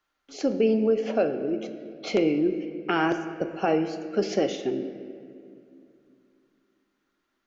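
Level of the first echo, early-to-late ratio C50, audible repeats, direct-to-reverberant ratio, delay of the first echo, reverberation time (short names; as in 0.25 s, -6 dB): none, 10.0 dB, none, 8.0 dB, none, 2.4 s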